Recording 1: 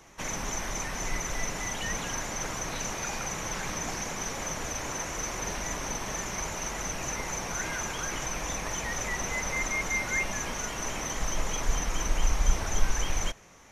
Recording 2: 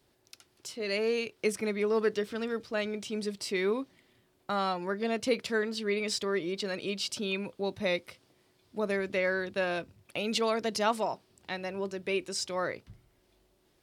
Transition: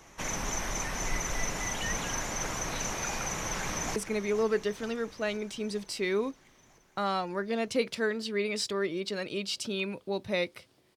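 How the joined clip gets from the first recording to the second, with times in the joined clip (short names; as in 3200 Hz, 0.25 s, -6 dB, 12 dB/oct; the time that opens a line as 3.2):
recording 1
3.4–3.96 echo throw 0.47 s, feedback 70%, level -13.5 dB
3.96 switch to recording 2 from 1.48 s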